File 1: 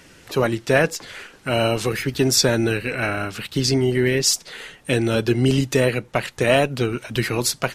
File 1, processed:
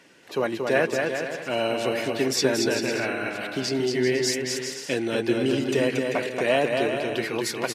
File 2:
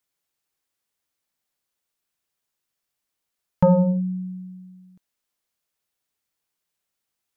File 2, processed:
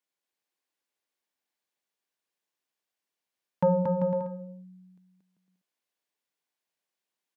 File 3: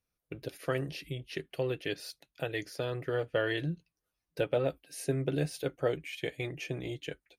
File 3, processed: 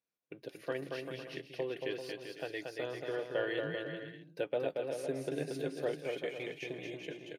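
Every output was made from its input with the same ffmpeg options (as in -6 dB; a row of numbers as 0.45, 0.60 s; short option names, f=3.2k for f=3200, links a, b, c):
-af "highpass=230,highshelf=f=5.8k:g=-8.5,bandreject=f=1.3k:w=10,aecho=1:1:230|391|503.7|582.6|637.8:0.631|0.398|0.251|0.158|0.1,volume=-4.5dB"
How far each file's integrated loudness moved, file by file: -4.5, -6.5, -4.0 LU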